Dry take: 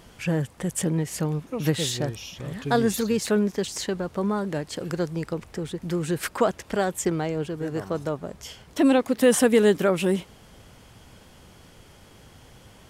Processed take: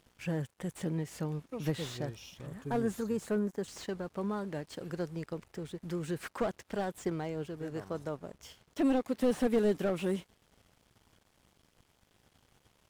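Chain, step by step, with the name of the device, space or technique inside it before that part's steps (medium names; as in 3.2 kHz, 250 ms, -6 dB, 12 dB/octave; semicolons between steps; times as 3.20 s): 2.46–3.68 s: high-order bell 3.4 kHz -10 dB; early transistor amplifier (crossover distortion -49.5 dBFS; slew-rate limiter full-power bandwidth 84 Hz); trim -9 dB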